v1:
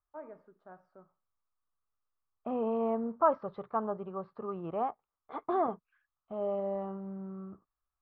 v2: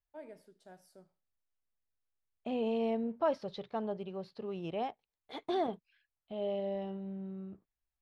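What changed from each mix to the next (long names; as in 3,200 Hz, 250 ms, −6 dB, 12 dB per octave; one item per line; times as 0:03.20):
master: remove low-pass with resonance 1,200 Hz, resonance Q 6.6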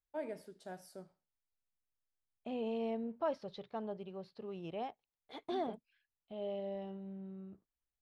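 first voice +7.5 dB
second voice −5.0 dB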